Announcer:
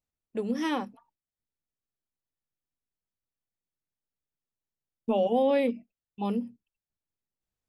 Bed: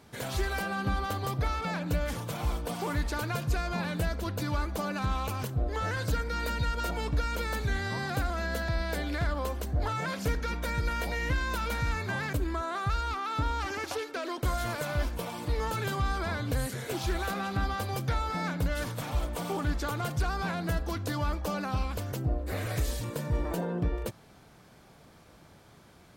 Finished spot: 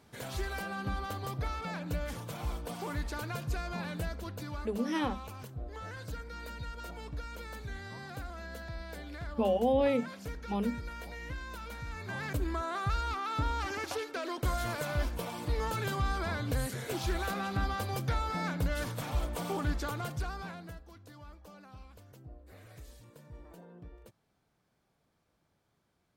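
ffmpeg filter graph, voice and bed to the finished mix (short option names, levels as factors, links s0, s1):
-filter_complex "[0:a]adelay=4300,volume=0.708[s0];[1:a]volume=1.58,afade=t=out:st=3.94:d=0.79:silence=0.501187,afade=t=in:st=11.9:d=0.55:silence=0.334965,afade=t=out:st=19.68:d=1.14:silence=0.11885[s1];[s0][s1]amix=inputs=2:normalize=0"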